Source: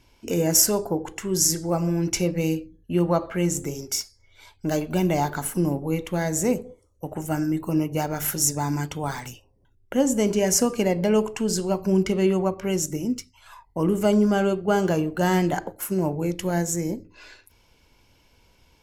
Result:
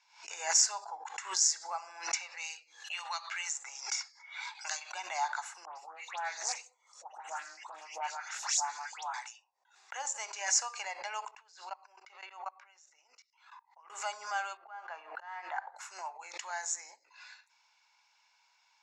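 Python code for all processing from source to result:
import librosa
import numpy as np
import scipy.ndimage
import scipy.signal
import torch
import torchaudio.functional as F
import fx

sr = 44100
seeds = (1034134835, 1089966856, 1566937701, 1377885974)

y = fx.chain(x, sr, fx.highpass(hz=810.0, slope=12),
    fx.band_squash(depth_pct=100), at=(2.14, 4.92))
y = fx.chain(y, sr, fx.overflow_wrap(gain_db=11.0),
    fx.dispersion(late='highs', ms=121.0, hz=2200.0),
    fx.doppler_dist(depth_ms=0.25), at=(5.65, 9.14))
y = fx.chain(y, sr, fx.highpass(hz=330.0, slope=24),
    fx.level_steps(step_db=23),
    fx.air_absorb(metres=120.0), at=(11.31, 13.9))
y = fx.chain(y, sr, fx.lowpass(hz=2000.0, slope=12),
    fx.auto_swell(attack_ms=372.0), at=(14.57, 15.76))
y = scipy.signal.sosfilt(scipy.signal.cheby1(4, 1.0, [810.0, 7200.0], 'bandpass', fs=sr, output='sos'), y)
y = fx.notch(y, sr, hz=3100.0, q=6.7)
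y = fx.pre_swell(y, sr, db_per_s=120.0)
y = y * librosa.db_to_amplitude(-4.5)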